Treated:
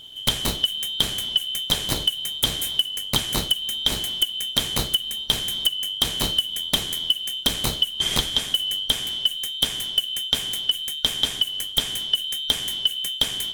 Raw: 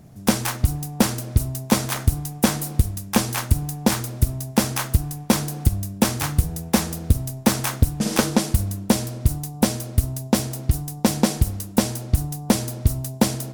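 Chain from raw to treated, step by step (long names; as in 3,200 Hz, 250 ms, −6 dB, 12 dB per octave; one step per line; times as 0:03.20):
band-splitting scrambler in four parts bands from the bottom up 2413
low-shelf EQ 500 Hz +11.5 dB
downward compressor 6 to 1, threshold −22 dBFS, peak gain reduction 12.5 dB
level +3.5 dB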